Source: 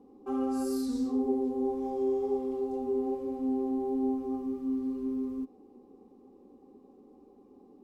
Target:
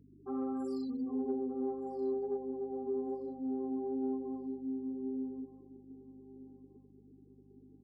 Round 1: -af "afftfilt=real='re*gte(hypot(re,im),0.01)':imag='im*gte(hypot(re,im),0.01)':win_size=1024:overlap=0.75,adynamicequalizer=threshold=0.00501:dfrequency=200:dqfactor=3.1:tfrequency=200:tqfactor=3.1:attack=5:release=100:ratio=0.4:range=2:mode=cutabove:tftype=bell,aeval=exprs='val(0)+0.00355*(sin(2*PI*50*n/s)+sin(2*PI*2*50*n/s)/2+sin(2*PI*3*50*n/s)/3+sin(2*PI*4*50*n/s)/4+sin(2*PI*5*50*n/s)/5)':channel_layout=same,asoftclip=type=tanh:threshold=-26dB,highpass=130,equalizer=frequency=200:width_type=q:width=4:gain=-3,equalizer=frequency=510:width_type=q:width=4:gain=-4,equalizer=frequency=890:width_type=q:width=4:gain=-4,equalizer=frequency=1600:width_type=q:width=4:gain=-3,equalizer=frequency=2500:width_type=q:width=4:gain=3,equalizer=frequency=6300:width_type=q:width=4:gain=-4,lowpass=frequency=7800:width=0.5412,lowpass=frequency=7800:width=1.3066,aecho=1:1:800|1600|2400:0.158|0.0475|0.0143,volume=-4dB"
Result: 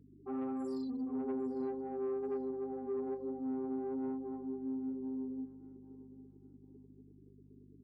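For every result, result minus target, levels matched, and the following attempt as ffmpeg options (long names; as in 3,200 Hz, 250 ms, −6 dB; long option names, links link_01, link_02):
soft clipping: distortion +16 dB; echo 424 ms early
-af "afftfilt=real='re*gte(hypot(re,im),0.01)':imag='im*gte(hypot(re,im),0.01)':win_size=1024:overlap=0.75,adynamicequalizer=threshold=0.00501:dfrequency=200:dqfactor=3.1:tfrequency=200:tqfactor=3.1:attack=5:release=100:ratio=0.4:range=2:mode=cutabove:tftype=bell,aeval=exprs='val(0)+0.00355*(sin(2*PI*50*n/s)+sin(2*PI*2*50*n/s)/2+sin(2*PI*3*50*n/s)/3+sin(2*PI*4*50*n/s)/4+sin(2*PI*5*50*n/s)/5)':channel_layout=same,asoftclip=type=tanh:threshold=-16.5dB,highpass=130,equalizer=frequency=200:width_type=q:width=4:gain=-3,equalizer=frequency=510:width_type=q:width=4:gain=-4,equalizer=frequency=890:width_type=q:width=4:gain=-4,equalizer=frequency=1600:width_type=q:width=4:gain=-3,equalizer=frequency=2500:width_type=q:width=4:gain=3,equalizer=frequency=6300:width_type=q:width=4:gain=-4,lowpass=frequency=7800:width=0.5412,lowpass=frequency=7800:width=1.3066,aecho=1:1:800|1600|2400:0.158|0.0475|0.0143,volume=-4dB"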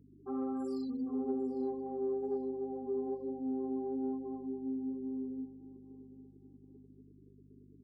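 echo 424 ms early
-af "afftfilt=real='re*gte(hypot(re,im),0.01)':imag='im*gte(hypot(re,im),0.01)':win_size=1024:overlap=0.75,adynamicequalizer=threshold=0.00501:dfrequency=200:dqfactor=3.1:tfrequency=200:tqfactor=3.1:attack=5:release=100:ratio=0.4:range=2:mode=cutabove:tftype=bell,aeval=exprs='val(0)+0.00355*(sin(2*PI*50*n/s)+sin(2*PI*2*50*n/s)/2+sin(2*PI*3*50*n/s)/3+sin(2*PI*4*50*n/s)/4+sin(2*PI*5*50*n/s)/5)':channel_layout=same,asoftclip=type=tanh:threshold=-16.5dB,highpass=130,equalizer=frequency=200:width_type=q:width=4:gain=-3,equalizer=frequency=510:width_type=q:width=4:gain=-4,equalizer=frequency=890:width_type=q:width=4:gain=-4,equalizer=frequency=1600:width_type=q:width=4:gain=-3,equalizer=frequency=2500:width_type=q:width=4:gain=3,equalizer=frequency=6300:width_type=q:width=4:gain=-4,lowpass=frequency=7800:width=0.5412,lowpass=frequency=7800:width=1.3066,aecho=1:1:1224|2448|3672:0.158|0.0475|0.0143,volume=-4dB"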